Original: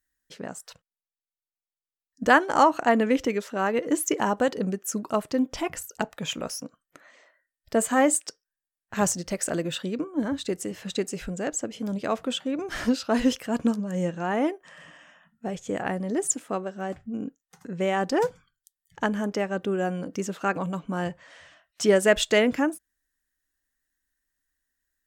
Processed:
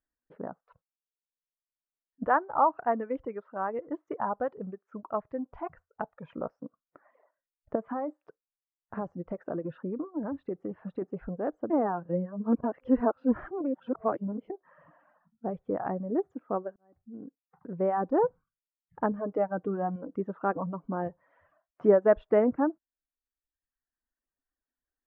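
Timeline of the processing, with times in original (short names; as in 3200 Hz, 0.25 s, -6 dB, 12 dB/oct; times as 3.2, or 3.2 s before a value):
2.24–6.3 bell 290 Hz -10 dB 2.2 oct
7.75–11.02 compressor 8:1, threshold -26 dBFS
11.7–14.5 reverse
16.76–17.86 fade in linear
19.11–19.96 comb 6.5 ms, depth 48%
whole clip: LPF 1200 Hz 24 dB/oct; reverb removal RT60 1 s; low shelf 140 Hz -7.5 dB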